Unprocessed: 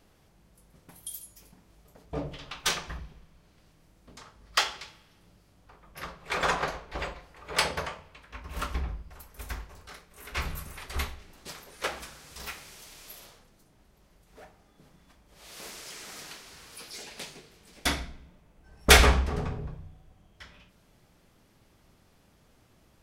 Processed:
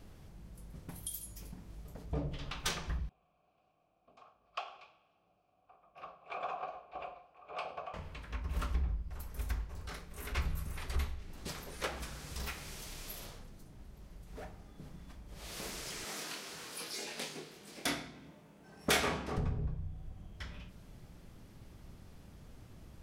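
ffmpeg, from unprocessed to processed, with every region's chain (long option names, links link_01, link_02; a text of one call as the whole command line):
ffmpeg -i in.wav -filter_complex "[0:a]asettb=1/sr,asplit=3[link_01][link_02][link_03];[link_01]atrim=end=3.094[link_04];[link_02]atrim=start=3.09:end=7.94,asetpts=PTS-STARTPTS,afade=type=in:duration=0.004:curve=qsin,afade=type=out:start_time=4.846:duration=0.004:curve=qsin,asplit=3[link_05][link_06][link_07];[link_05]bandpass=frequency=730:width_type=q:width=8,volume=0dB[link_08];[link_06]bandpass=frequency=1090:width_type=q:width=8,volume=-6dB[link_09];[link_07]bandpass=frequency=2440:width_type=q:width=8,volume=-9dB[link_10];[link_08][link_09][link_10]amix=inputs=3:normalize=0,highshelf=frequency=12000:gain=-8.5,aecho=1:1:103:0.0891,atrim=end_sample=213885[link_11];[link_03]atrim=start=7.936[link_12];[link_04][link_11]acrossfade=duration=0.004:curve1=hsin:curve2=qsin[link_13];[link_13][link_12]acrossfade=duration=0.004:curve1=qsin:curve2=hsin,asettb=1/sr,asplit=3[link_14][link_15][link_16];[link_14]atrim=end=16.044[link_17];[link_15]atrim=start=16.04:end=19.38,asetpts=PTS-STARTPTS,afade=type=in:duration=0.004:curve=qsin,afade=type=out:start_time=3.336:duration=0.004:curve=qsin,highpass=240,asplit=2[link_18][link_19];[link_19]adelay=25,volume=-3dB[link_20];[link_18][link_20]amix=inputs=2:normalize=0,atrim=end_sample=147294[link_21];[link_16]atrim=start=19.376[link_22];[link_17][link_21]acrossfade=duration=0.004:curve1=hsin:curve2=qsin[link_23];[link_23][link_22]acrossfade=duration=0.004:curve1=qsin:curve2=hsin,lowshelf=frequency=250:gain=11,acompressor=threshold=-41dB:ratio=2,volume=1dB" out.wav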